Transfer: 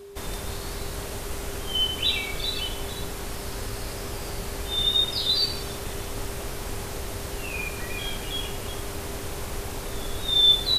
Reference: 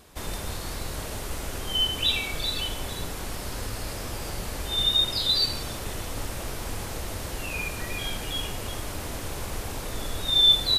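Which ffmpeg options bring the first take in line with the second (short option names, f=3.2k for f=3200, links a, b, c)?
-af "bandreject=f=400:w=30"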